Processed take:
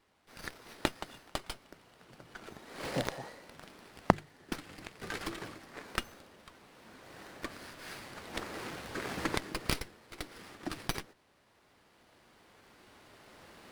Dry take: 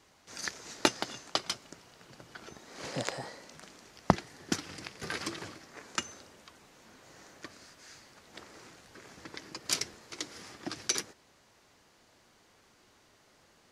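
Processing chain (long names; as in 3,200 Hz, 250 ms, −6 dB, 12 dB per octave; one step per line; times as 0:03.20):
camcorder AGC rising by 6.1 dB per second
mains-hum notches 50/100/150 Hz
windowed peak hold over 5 samples
level −8 dB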